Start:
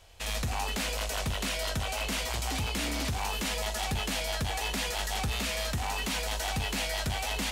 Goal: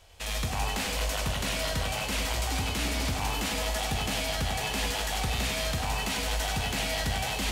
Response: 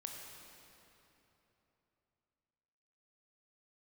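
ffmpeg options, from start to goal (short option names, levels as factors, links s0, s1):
-filter_complex "[0:a]asplit=2[s0][s1];[1:a]atrim=start_sample=2205,adelay=98[s2];[s1][s2]afir=irnorm=-1:irlink=0,volume=0.944[s3];[s0][s3]amix=inputs=2:normalize=0"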